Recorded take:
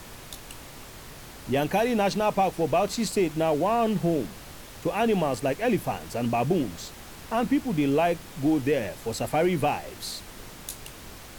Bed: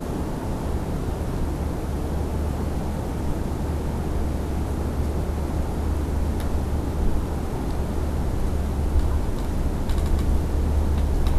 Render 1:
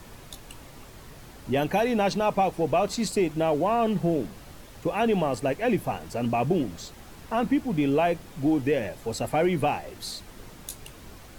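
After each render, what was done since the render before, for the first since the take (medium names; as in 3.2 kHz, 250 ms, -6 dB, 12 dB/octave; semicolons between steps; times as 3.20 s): noise reduction 6 dB, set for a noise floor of -44 dBFS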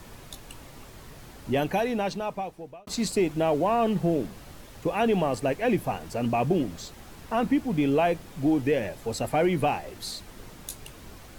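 1.50–2.87 s: fade out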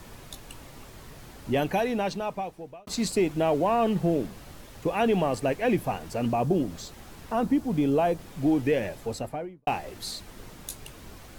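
6.28–8.19 s: dynamic bell 2.3 kHz, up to -8 dB, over -46 dBFS, Q 1.1; 8.94–9.67 s: studio fade out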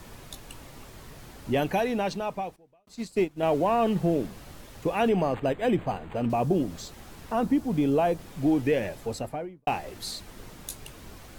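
2.56–3.43 s: upward expansion 2.5:1, over -32 dBFS; 5.09–6.30 s: decimation joined by straight lines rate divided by 8×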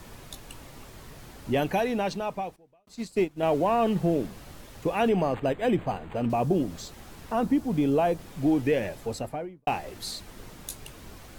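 no audible change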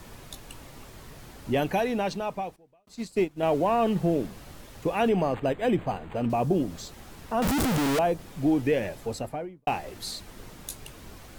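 7.42–7.99 s: one-bit comparator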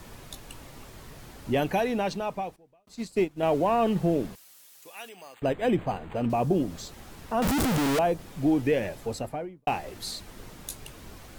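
4.35–5.42 s: differentiator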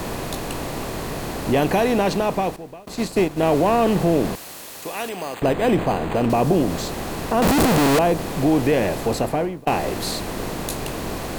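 spectral levelling over time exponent 0.6; in parallel at -1.5 dB: peak limiter -17.5 dBFS, peak gain reduction 7.5 dB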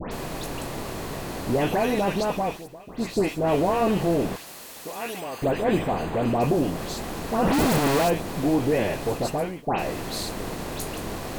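flange 0.42 Hz, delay 3.7 ms, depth 8.3 ms, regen -63%; phase dispersion highs, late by 119 ms, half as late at 2.2 kHz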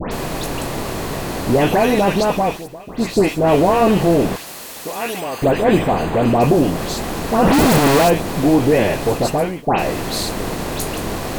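trim +8.5 dB; peak limiter -2 dBFS, peak gain reduction 1 dB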